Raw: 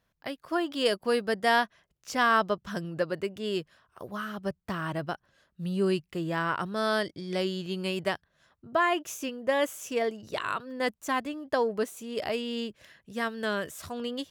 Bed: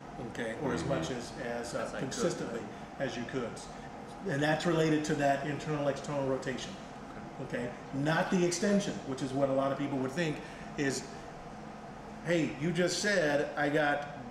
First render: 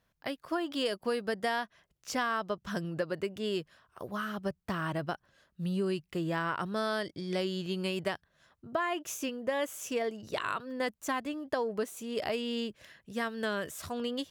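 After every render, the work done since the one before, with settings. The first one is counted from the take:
downward compressor 6 to 1, threshold −28 dBFS, peak gain reduction 9.5 dB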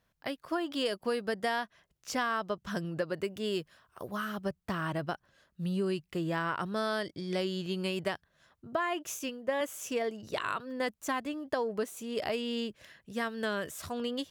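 0:03.20–0:04.42: high-shelf EQ 8,800 Hz +6 dB
0:09.19–0:09.61: multiband upward and downward expander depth 70%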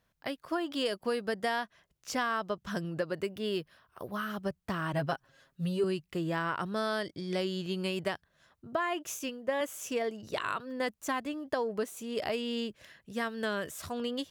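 0:03.31–0:04.30: parametric band 7,300 Hz −10.5 dB 0.42 octaves
0:04.93–0:05.84: comb filter 7.4 ms, depth 94%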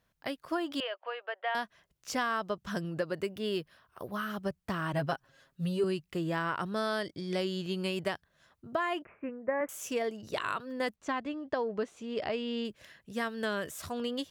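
0:00.80–0:01.55: elliptic band-pass filter 580–3,000 Hz, stop band 50 dB
0:09.02–0:09.69: Butterworth low-pass 2,300 Hz 72 dB per octave
0:10.96–0:12.65: high-frequency loss of the air 130 metres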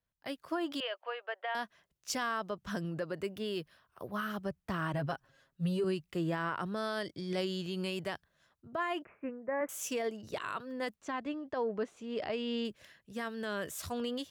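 brickwall limiter −26 dBFS, peak gain reduction 10 dB
multiband upward and downward expander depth 40%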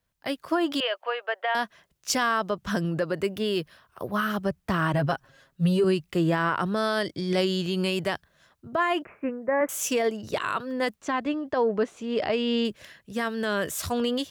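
level +10 dB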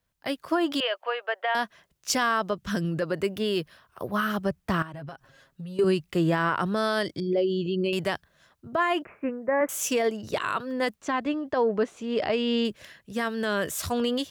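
0:02.53–0:03.02: parametric band 840 Hz −7 dB 1.2 octaves
0:04.82–0:05.79: downward compressor 12 to 1, threshold −35 dBFS
0:07.20–0:07.93: spectral envelope exaggerated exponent 2

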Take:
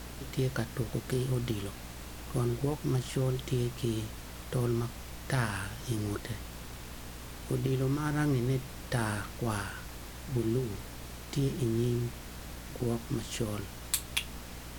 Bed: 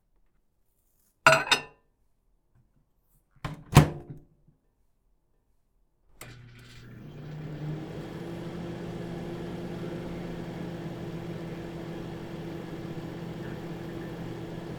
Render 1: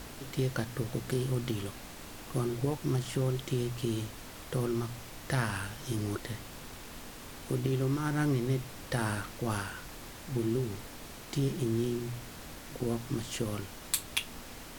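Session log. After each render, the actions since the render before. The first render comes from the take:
hum removal 60 Hz, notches 3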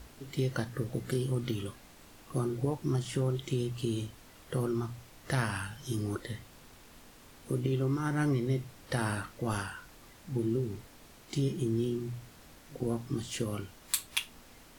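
noise reduction from a noise print 9 dB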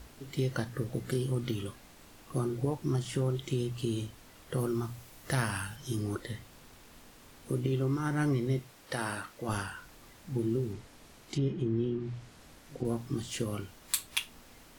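0:04.58–0:05.76: high-shelf EQ 8,600 Hz +7.5 dB
0:08.59–0:09.49: low-shelf EQ 190 Hz −12 dB
0:10.72–0:12.85: treble cut that deepens with the level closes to 2,500 Hz, closed at −28.5 dBFS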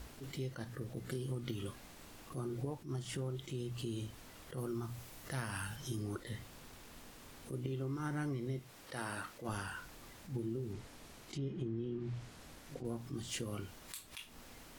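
downward compressor, threshold −36 dBFS, peak gain reduction 12 dB
level that may rise only so fast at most 180 dB per second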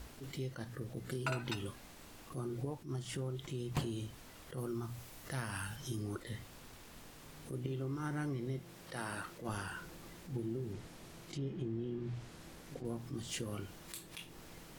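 mix in bed −20.5 dB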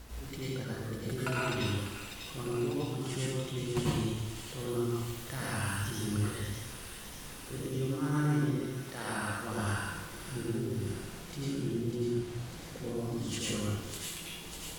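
delay with a high-pass on its return 597 ms, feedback 70%, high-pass 2,500 Hz, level −5.5 dB
dense smooth reverb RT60 1.1 s, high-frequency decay 0.95×, pre-delay 75 ms, DRR −6 dB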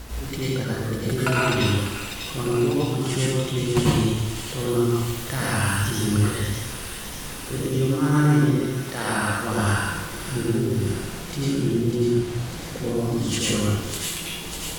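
level +11.5 dB

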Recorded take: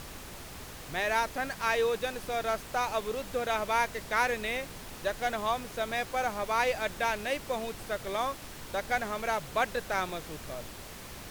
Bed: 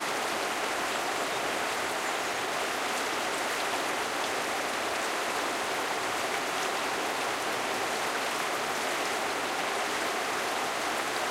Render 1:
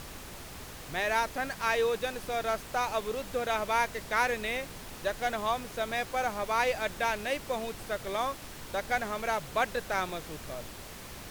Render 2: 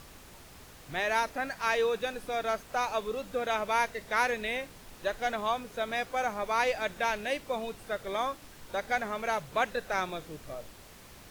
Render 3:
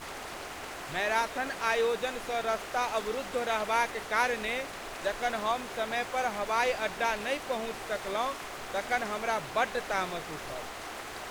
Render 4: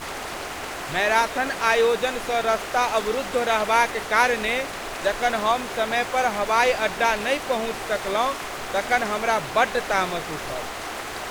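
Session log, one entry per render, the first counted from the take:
no processing that can be heard
noise reduction from a noise print 7 dB
mix in bed −10.5 dB
level +8.5 dB

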